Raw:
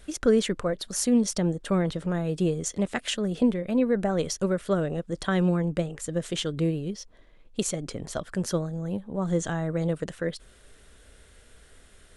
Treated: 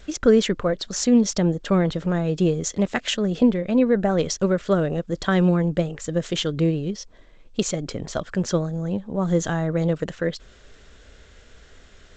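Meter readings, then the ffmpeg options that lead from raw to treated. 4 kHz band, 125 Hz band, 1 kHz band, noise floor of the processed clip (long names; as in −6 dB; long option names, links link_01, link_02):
+5.0 dB, +5.0 dB, +5.0 dB, −50 dBFS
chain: -af "volume=5dB" -ar 16000 -c:a g722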